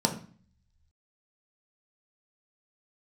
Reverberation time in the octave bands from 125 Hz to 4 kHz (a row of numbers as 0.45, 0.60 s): 1.1, 0.70, 0.40, 0.45, 0.45, 0.45 s